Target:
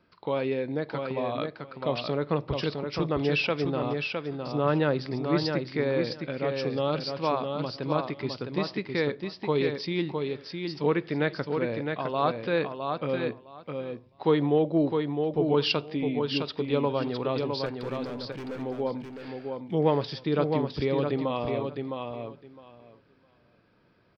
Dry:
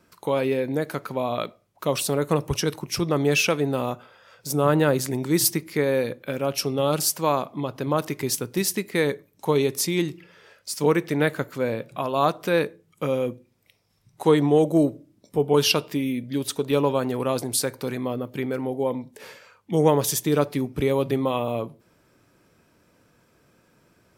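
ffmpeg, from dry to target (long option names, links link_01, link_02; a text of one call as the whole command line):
ffmpeg -i in.wav -filter_complex "[0:a]aresample=11025,aresample=44100,asettb=1/sr,asplit=3[link_01][link_02][link_03];[link_01]atrim=end=17.664[link_04];[link_02]atrim=start=17.66:end=18.62,asetpts=PTS-STARTPTS,afade=type=in:duration=0.004:curve=qsin,afade=type=out:start_time=0.956:duration=0.004:curve=qsin,asoftclip=type=hard:threshold=-29.5dB[link_05];[link_03]atrim=start=18.616[link_06];[link_04][link_05]acrossfade=duration=0.004:curve1=hsin:curve2=qsin[link_07];[link_07][link_06]acrossfade=duration=0.004:curve1=qsin:curve2=hsin,aecho=1:1:660|1320|1980:0.562|0.09|0.0144,volume=-5dB" out.wav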